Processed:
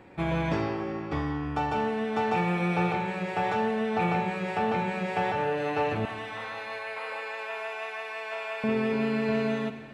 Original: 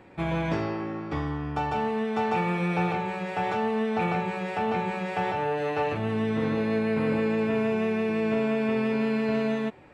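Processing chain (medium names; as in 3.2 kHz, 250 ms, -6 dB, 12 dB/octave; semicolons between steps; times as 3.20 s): 6.05–8.64 s: high-pass 690 Hz 24 dB/octave; reverberation RT60 2.1 s, pre-delay 45 ms, DRR 9.5 dB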